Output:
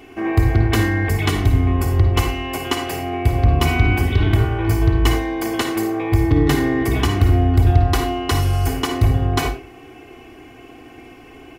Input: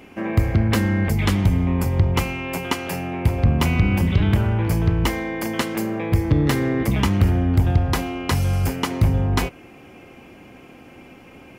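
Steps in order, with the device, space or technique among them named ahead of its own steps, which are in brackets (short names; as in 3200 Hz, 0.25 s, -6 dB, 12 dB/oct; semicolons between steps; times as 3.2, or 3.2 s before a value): microphone above a desk (comb 2.7 ms, depth 76%; reverb RT60 0.35 s, pre-delay 48 ms, DRR 5.5 dB)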